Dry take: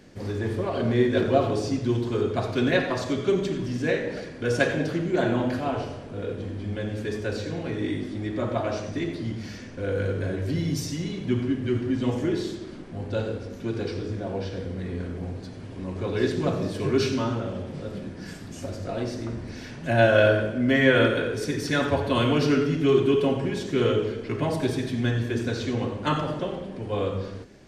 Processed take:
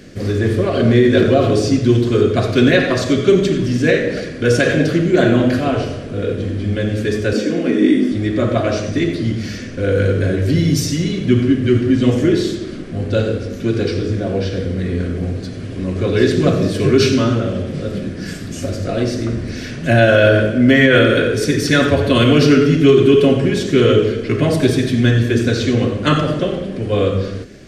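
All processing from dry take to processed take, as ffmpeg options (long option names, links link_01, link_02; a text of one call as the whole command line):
ffmpeg -i in.wav -filter_complex "[0:a]asettb=1/sr,asplit=3[link_01][link_02][link_03];[link_01]atrim=end=7.334[link_04];[link_02]atrim=start=7.33:end=8.12,asetpts=PTS-STARTPTS,afade=type=in:duration=0.004:curve=qsin,afade=type=out:start_time=0.786:duration=0.004:curve=qsin,lowshelf=frequency=160:width_type=q:width=3:gain=-13,bandreject=frequency=4000:width=7[link_05];[link_03]atrim=start=8.116[link_06];[link_04][link_05]acrossfade=duration=0.004:curve1=hsin:curve2=qsin[link_07];[link_07][link_06]acrossfade=duration=0.004:curve1=qsin:curve2=hsin,equalizer=frequency=890:width=3.5:gain=-14.5,alimiter=level_in=13dB:limit=-1dB:release=50:level=0:latency=1,volume=-1dB" out.wav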